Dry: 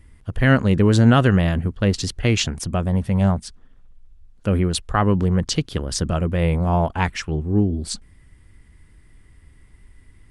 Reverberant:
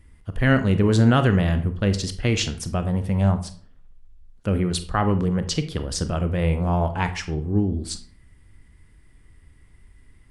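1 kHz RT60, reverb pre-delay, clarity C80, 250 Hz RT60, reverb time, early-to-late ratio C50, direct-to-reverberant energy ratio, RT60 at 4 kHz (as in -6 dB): 0.45 s, 25 ms, 16.5 dB, 0.55 s, 0.45 s, 12.0 dB, 9.0 dB, 0.30 s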